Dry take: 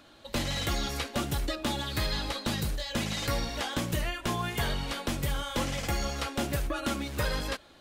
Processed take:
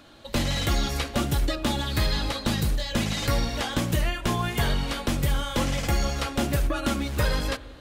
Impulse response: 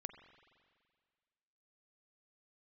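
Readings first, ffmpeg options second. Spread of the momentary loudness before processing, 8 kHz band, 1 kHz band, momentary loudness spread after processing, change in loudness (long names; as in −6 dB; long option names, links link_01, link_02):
2 LU, +3.5 dB, +4.0 dB, 2 LU, +5.0 dB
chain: -filter_complex "[0:a]asplit=2[link_01][link_02];[link_02]lowshelf=frequency=340:gain=8.5[link_03];[1:a]atrim=start_sample=2205[link_04];[link_03][link_04]afir=irnorm=-1:irlink=0,volume=-1.5dB[link_05];[link_01][link_05]amix=inputs=2:normalize=0"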